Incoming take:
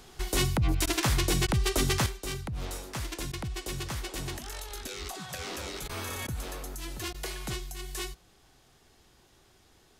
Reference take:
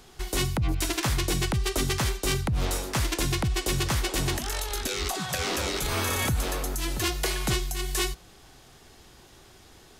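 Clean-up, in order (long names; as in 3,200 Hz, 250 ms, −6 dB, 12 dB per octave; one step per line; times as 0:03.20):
repair the gap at 0:00.86/0:01.47/0:03.32/0:05.88/0:06.27/0:07.13, 12 ms
level correction +9 dB, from 0:02.06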